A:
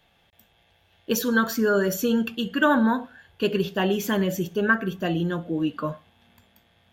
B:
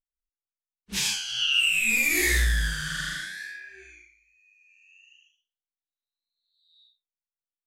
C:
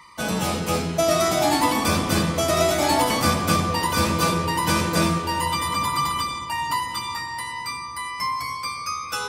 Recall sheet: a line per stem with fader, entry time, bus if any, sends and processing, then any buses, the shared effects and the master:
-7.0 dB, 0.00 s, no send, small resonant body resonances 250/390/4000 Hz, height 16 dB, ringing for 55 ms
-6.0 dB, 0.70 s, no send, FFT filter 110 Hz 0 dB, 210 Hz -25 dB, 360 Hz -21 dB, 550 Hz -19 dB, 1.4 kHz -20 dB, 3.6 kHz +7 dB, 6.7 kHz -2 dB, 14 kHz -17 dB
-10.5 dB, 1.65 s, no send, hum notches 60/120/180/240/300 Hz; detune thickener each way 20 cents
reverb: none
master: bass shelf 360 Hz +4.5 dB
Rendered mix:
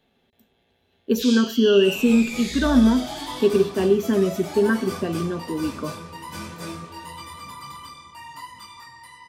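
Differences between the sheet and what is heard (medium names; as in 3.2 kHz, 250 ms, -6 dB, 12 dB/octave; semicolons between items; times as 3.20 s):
stem B: entry 0.70 s -> 0.25 s; master: missing bass shelf 360 Hz +4.5 dB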